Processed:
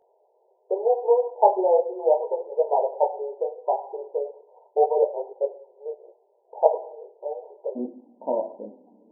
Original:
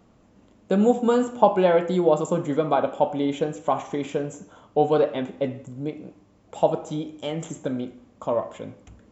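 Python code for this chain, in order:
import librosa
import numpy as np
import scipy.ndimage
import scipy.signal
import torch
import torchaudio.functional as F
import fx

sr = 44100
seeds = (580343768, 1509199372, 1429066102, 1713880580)

y = fx.brickwall_bandpass(x, sr, low_hz=fx.steps((0.0, 370.0), (7.75, 200.0)), high_hz=1000.0)
y = fx.detune_double(y, sr, cents=26)
y = y * 10.0 ** (4.0 / 20.0)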